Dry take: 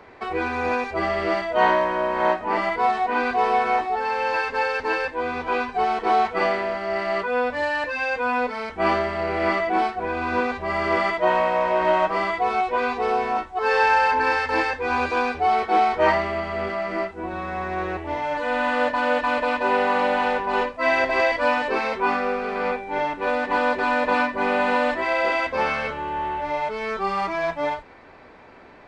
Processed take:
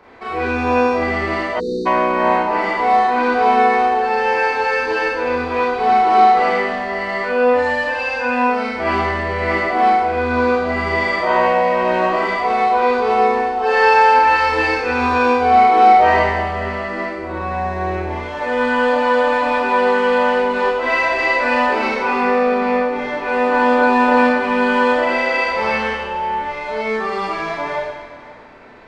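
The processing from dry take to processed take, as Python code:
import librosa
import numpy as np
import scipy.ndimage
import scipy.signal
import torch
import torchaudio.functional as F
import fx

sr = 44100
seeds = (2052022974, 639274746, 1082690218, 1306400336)

y = x + 10.0 ** (-18.0 / 20.0) * np.pad(x, (int(529 * sr / 1000.0), 0))[:len(x)]
y = fx.rev_schroeder(y, sr, rt60_s=1.2, comb_ms=25, drr_db=-6.5)
y = fx.spec_erase(y, sr, start_s=1.6, length_s=0.26, low_hz=520.0, high_hz=3600.0)
y = y * librosa.db_to_amplitude(-2.5)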